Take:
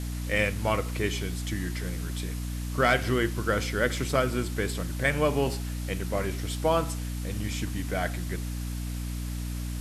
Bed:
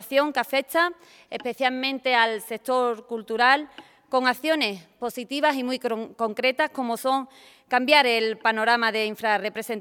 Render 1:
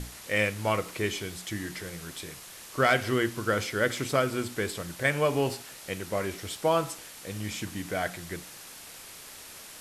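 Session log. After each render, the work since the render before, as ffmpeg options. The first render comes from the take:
-af "bandreject=f=60:t=h:w=6,bandreject=f=120:t=h:w=6,bandreject=f=180:t=h:w=6,bandreject=f=240:t=h:w=6,bandreject=f=300:t=h:w=6"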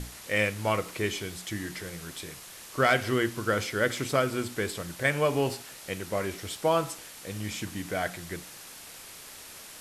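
-af anull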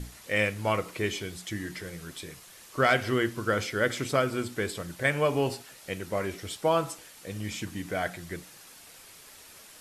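-af "afftdn=nr=6:nf=-46"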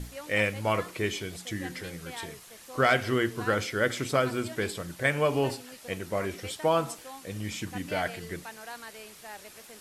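-filter_complex "[1:a]volume=0.0794[s0];[0:a][s0]amix=inputs=2:normalize=0"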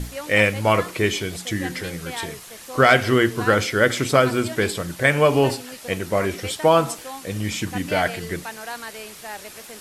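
-af "volume=2.82,alimiter=limit=0.708:level=0:latency=1"

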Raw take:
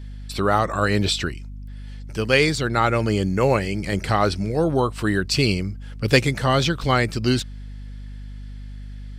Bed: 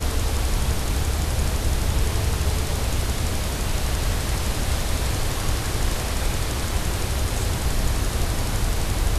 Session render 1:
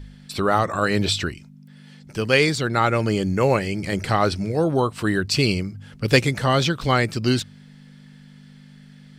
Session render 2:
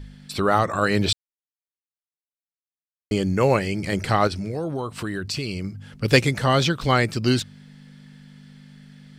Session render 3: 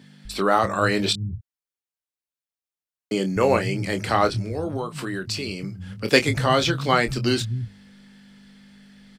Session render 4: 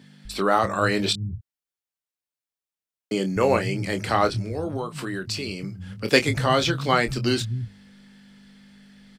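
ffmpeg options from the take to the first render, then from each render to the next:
-af "bandreject=f=50:t=h:w=4,bandreject=f=100:t=h:w=4"
-filter_complex "[0:a]asettb=1/sr,asplit=3[s0][s1][s2];[s0]atrim=end=4.274[s3];[s1]atrim=start=4.27:end=5.64,asetpts=PTS-STARTPTS,afade=t=in:d=0.004:c=qsin,afade=t=out:st=1.366:d=0.004:c=qsin,acompressor=threshold=0.0562:ratio=4:attack=3.2:release=140:knee=1:detection=peak[s4];[s2]atrim=start=5.636[s5];[s3][s4]acrossfade=d=0.004:c1=hsin:c2=qsin[s6];[s6][s5]acrossfade=d=0.004:c1=qsin:c2=hsin,asplit=3[s7][s8][s9];[s7]atrim=end=1.13,asetpts=PTS-STARTPTS,afade=t=out:st=1.126:d=0.004:c=hsin[s10];[s8]atrim=start=1.13:end=3.11,asetpts=PTS-STARTPTS,volume=0[s11];[s9]atrim=start=3.11,asetpts=PTS-STARTPTS,afade=t=in:d=0.004:c=hsin[s12];[s10][s11][s12]concat=n=3:v=0:a=1"
-filter_complex "[0:a]asplit=2[s0][s1];[s1]adelay=26,volume=0.355[s2];[s0][s2]amix=inputs=2:normalize=0,acrossover=split=160[s3][s4];[s3]adelay=250[s5];[s5][s4]amix=inputs=2:normalize=0"
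-af "volume=0.891"

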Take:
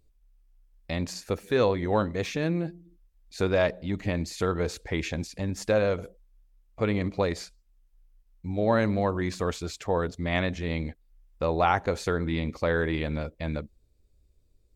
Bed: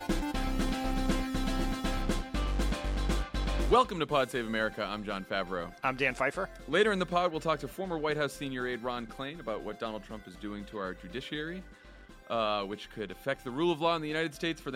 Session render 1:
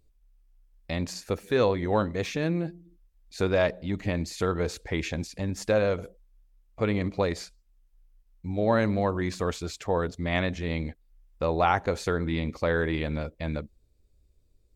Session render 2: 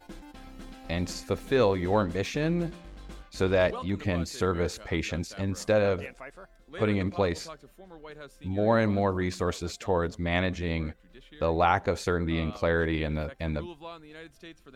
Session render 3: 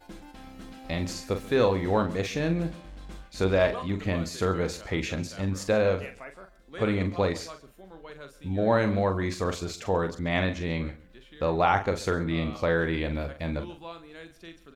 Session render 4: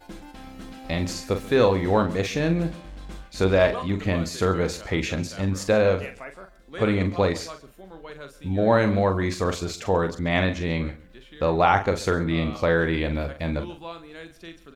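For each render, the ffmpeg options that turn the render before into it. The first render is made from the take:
-af anull
-filter_complex "[1:a]volume=0.2[s0];[0:a][s0]amix=inputs=2:normalize=0"
-filter_complex "[0:a]asplit=2[s0][s1];[s1]adelay=42,volume=0.398[s2];[s0][s2]amix=inputs=2:normalize=0,aecho=1:1:135:0.106"
-af "volume=1.58"

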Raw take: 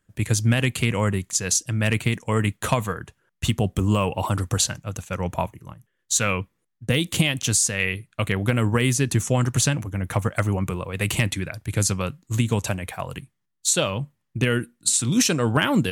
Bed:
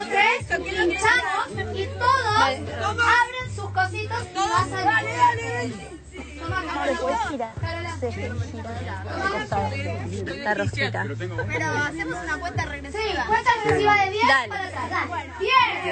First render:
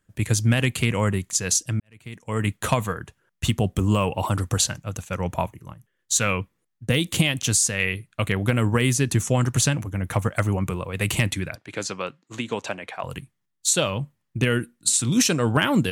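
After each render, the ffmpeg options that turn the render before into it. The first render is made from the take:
-filter_complex "[0:a]asettb=1/sr,asplit=3[s0][s1][s2];[s0]atrim=end=11.554[s3];[s1]atrim=start=11.55:end=13.04,asetpts=PTS-STARTPTS,afade=t=in:d=0.004:c=qsin,afade=t=out:st=1.486:d=0.004:c=qsin,highpass=320,lowpass=4500[s4];[s2]atrim=start=13.036[s5];[s3][s4]acrossfade=d=0.004:c1=hsin:c2=qsin[s6];[s6][s5]acrossfade=d=0.004:c1=qsin:c2=hsin,asplit=2[s7][s8];[s7]atrim=end=1.8,asetpts=PTS-STARTPTS,afade=t=out:st=1.796:d=0.004:c=hsin[s9];[s8]atrim=start=1.8,asetpts=PTS-STARTPTS,afade=t=in:d=0.7:c=qua[s10];[s9][s10]concat=n=2:v=0:a=1"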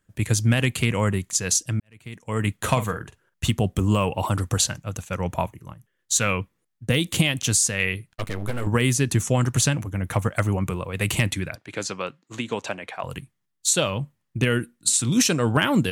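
-filter_complex "[0:a]asettb=1/sr,asplit=3[s0][s1][s2];[s0]atrim=end=2.544[s3];[s1]atrim=start=2.54:end=3.48,asetpts=PTS-STARTPTS,afade=t=in:d=0.004:c=qsin,afade=t=out:st=0.936:d=0.004:c=qsin,asplit=2[s4][s5];[s5]adelay=46,volume=0.282[s6];[s4][s6]amix=inputs=2:normalize=0,atrim=end_sample=41454[s7];[s2]atrim=start=3.476[s8];[s3][s7]acrossfade=d=0.004:c1=hsin:c2=qsin[s9];[s9][s8]acrossfade=d=0.004:c1=qsin:c2=hsin,asettb=1/sr,asplit=3[s10][s11][s12];[s10]atrim=end=8.124[s13];[s11]atrim=start=8.12:end=8.67,asetpts=PTS-STARTPTS,afade=t=in:d=0.004:c=qsin,afade=t=out:st=0.546:d=0.004:c=qsin,aeval=exprs='max(val(0),0)':c=same[s14];[s12]atrim=start=8.666[s15];[s13][s14]acrossfade=d=0.004:c1=hsin:c2=qsin[s16];[s16][s15]acrossfade=d=0.004:c1=qsin:c2=hsin"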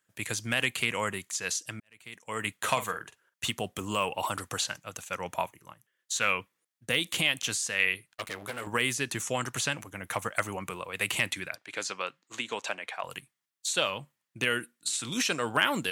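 -filter_complex "[0:a]highpass=f=1100:p=1,acrossover=split=3500[s0][s1];[s1]acompressor=threshold=0.0282:ratio=4:attack=1:release=60[s2];[s0][s2]amix=inputs=2:normalize=0"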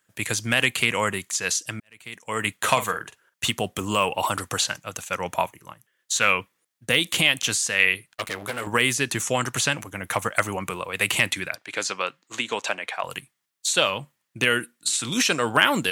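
-af "volume=2.24"

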